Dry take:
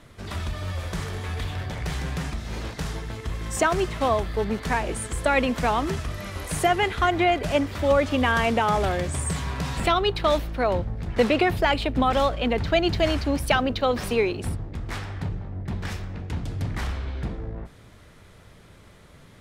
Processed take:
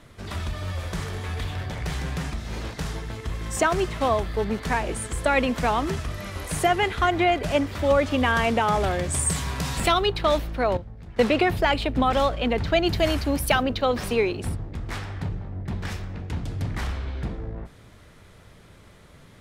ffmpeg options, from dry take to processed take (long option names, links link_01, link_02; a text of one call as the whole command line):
ffmpeg -i in.wav -filter_complex "[0:a]asettb=1/sr,asplit=3[link_01][link_02][link_03];[link_01]atrim=end=9.104[link_04];[link_02]atrim=start=9.1:end=10.06,asetpts=PTS-STARTPTS,afade=type=in:duration=0.004:curve=qsin,afade=type=out:start_time=0.956:duration=0.004:curve=qsin,highshelf=frequency=5100:gain=10[link_05];[link_03]atrim=start=10.056[link_06];[link_04][link_05]acrossfade=duration=0.004:curve1=hsin:curve2=qsin[link_07];[link_07][link_06]acrossfade=duration=0.004:curve1=qsin:curve2=hsin,asettb=1/sr,asplit=3[link_08][link_09][link_10];[link_08]atrim=end=12.864[link_11];[link_09]atrim=start=12.86:end=13.63,asetpts=PTS-STARTPTS,afade=type=in:duration=0.004:curve=qsin,afade=type=out:start_time=0.766:duration=0.004:curve=qsin,equalizer=frequency=13000:width=0.94:gain=10.5[link_12];[link_10]atrim=start=13.626[link_13];[link_11][link_12]acrossfade=duration=0.004:curve1=hsin:curve2=qsin[link_14];[link_14][link_13]acrossfade=duration=0.004:curve1=qsin:curve2=hsin,asplit=3[link_15][link_16][link_17];[link_15]atrim=end=10.772[link_18];[link_16]atrim=start=10.768:end=11.192,asetpts=PTS-STARTPTS,volume=-10.5dB[link_19];[link_17]atrim=start=11.188[link_20];[link_18][link_19]acrossfade=duration=0.004:curve1=hsin:curve2=hsin[link_21];[link_21][link_20]acrossfade=duration=0.004:curve1=hsin:curve2=hsin" out.wav